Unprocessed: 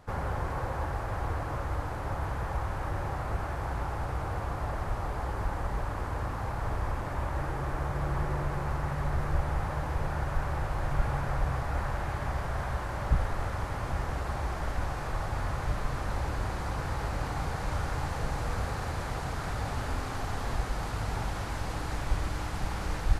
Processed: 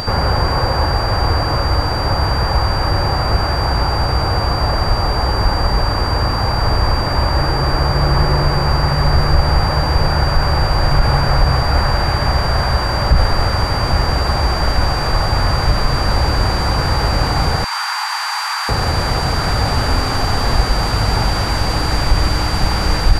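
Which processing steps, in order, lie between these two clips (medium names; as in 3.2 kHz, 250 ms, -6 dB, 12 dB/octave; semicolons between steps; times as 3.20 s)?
17.64–18.69 s: elliptic high-pass 900 Hz, stop band 60 dB; upward compressor, threshold -32 dBFS; whistle 4.7 kHz -41 dBFS; loudness maximiser +17.5 dB; trim -1 dB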